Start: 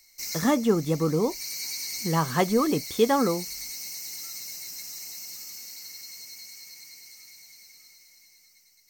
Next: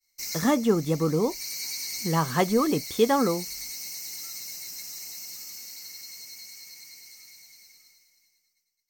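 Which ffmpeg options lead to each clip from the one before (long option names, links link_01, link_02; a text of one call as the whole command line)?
ffmpeg -i in.wav -af "agate=range=-33dB:threshold=-48dB:ratio=3:detection=peak" out.wav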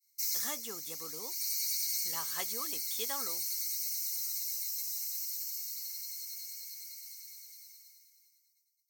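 ffmpeg -i in.wav -af "aderivative" out.wav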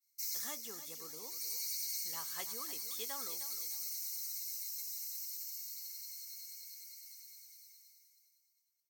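ffmpeg -i in.wav -af "aecho=1:1:307|614|921:0.251|0.0754|0.0226,volume=-6dB" out.wav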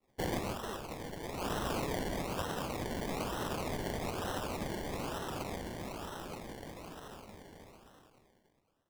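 ffmpeg -i in.wav -af "acrusher=samples=27:mix=1:aa=0.000001:lfo=1:lforange=16.2:lforate=1.1,volume=4.5dB" out.wav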